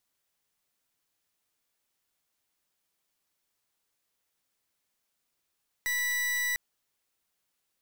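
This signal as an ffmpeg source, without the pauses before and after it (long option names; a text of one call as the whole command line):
ffmpeg -f lavfi -i "aevalsrc='0.0335*(2*lt(mod(1960*t,1),0.41)-1)':duration=0.7:sample_rate=44100" out.wav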